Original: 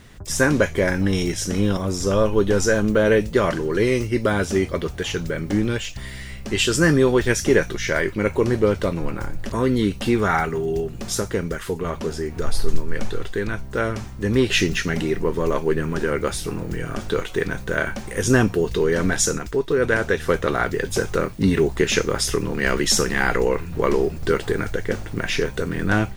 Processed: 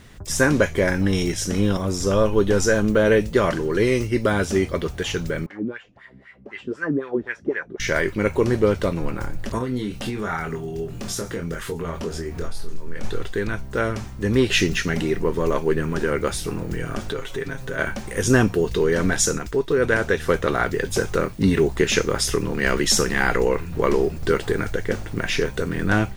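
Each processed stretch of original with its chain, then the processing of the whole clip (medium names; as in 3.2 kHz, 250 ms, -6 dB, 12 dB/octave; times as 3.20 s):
5.46–7.80 s: treble shelf 2.8 kHz -9 dB + wah-wah 3.9 Hz 220–2000 Hz, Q 2.6
9.58–13.04 s: compression 3:1, threshold -26 dBFS + doubling 24 ms -5 dB
17.12–17.79 s: comb 7.4 ms, depth 66% + compression 2:1, threshold -29 dBFS
whole clip: none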